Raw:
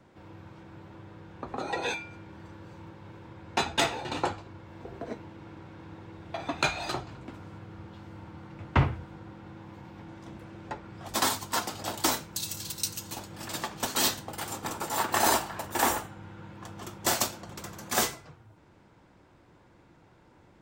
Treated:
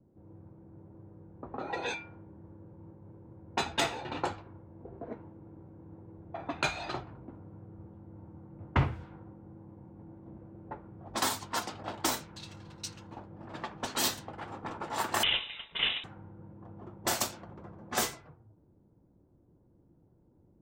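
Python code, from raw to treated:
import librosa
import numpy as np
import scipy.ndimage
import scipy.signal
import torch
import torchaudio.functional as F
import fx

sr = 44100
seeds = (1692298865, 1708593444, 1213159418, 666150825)

y = fx.freq_invert(x, sr, carrier_hz=3800, at=(15.23, 16.04))
y = fx.env_lowpass(y, sr, base_hz=340.0, full_db=-25.0)
y = F.gain(torch.from_numpy(y), -3.5).numpy()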